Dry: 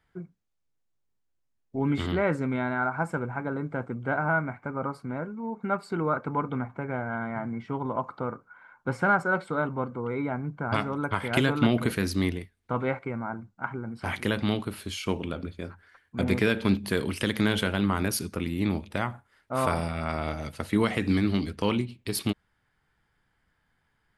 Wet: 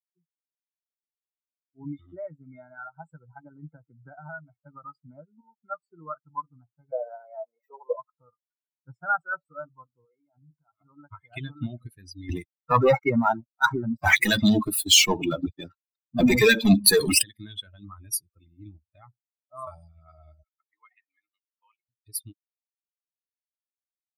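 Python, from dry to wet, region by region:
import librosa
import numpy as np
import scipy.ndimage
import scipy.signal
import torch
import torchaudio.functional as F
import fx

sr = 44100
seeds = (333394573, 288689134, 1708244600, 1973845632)

y = fx.chain(x, sr, fx.lowpass(hz=8500.0, slope=24),
    fx.band_squash(depth_pct=100), at=(1.84, 5.41))
y = fx.chain(y, sr, fx.zero_step(step_db=-39.0),
    fx.highpass_res(hz=500.0, q=5.8), at=(6.92, 7.96))
y = fx.chain(y, sr, fx.low_shelf(hz=70.0, db=-9.5),
    fx.hum_notches(base_hz=60, count=5),
    fx.over_compress(threshold_db=-36.0, ratio=-1.0), at=(10.05, 10.81))
y = fx.chain(y, sr, fx.highpass(hz=150.0, slope=12),
    fx.leveller(passes=5), at=(12.29, 17.22))
y = fx.chain(y, sr, fx.highpass(hz=970.0, slope=12),
    fx.air_absorb(metres=280.0), at=(20.43, 21.89))
y = fx.bin_expand(y, sr, power=3.0)
y = fx.high_shelf(y, sr, hz=2600.0, db=9.0)
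y = y * librosa.db_to_amplitude(2.5)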